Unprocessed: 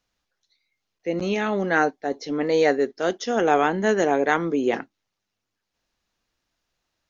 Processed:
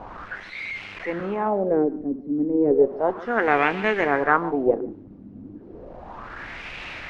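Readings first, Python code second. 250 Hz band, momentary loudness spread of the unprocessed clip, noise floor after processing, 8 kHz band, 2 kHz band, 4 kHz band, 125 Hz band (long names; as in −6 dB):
+1.0 dB, 8 LU, −43 dBFS, can't be measured, +1.0 dB, −4.0 dB, −1.5 dB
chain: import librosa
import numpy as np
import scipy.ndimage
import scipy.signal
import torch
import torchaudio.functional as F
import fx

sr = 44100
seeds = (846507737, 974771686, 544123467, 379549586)

p1 = fx.delta_mod(x, sr, bps=64000, step_db=-28.5)
p2 = p1 + fx.echo_single(p1, sr, ms=146, db=-14.5, dry=0)
p3 = fx.cheby_harmonics(p2, sr, harmonics=(4,), levels_db=(-17,), full_scale_db=-4.5)
p4 = fx.filter_lfo_lowpass(p3, sr, shape='sine', hz=0.33, low_hz=250.0, high_hz=2500.0, q=3.5)
y = p4 * 10.0 ** (-3.5 / 20.0)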